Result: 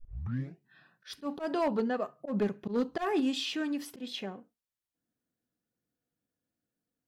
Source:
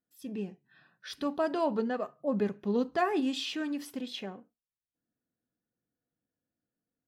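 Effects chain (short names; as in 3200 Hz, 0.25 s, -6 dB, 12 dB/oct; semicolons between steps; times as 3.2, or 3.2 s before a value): tape start at the beginning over 0.59 s; hard clip -23.5 dBFS, distortion -19 dB; auto swell 0.103 s; gain +1 dB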